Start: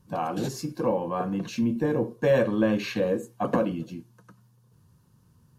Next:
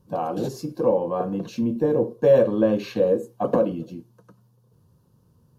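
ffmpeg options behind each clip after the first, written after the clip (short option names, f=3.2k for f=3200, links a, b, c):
-af "equalizer=f=500:t=o:w=1:g=7,equalizer=f=2k:t=o:w=1:g=-8,equalizer=f=8k:t=o:w=1:g=-5"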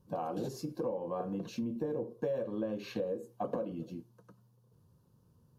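-af "acompressor=threshold=-26dB:ratio=6,volume=-6.5dB"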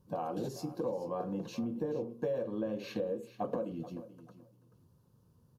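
-af "aecho=1:1:433|866:0.178|0.032"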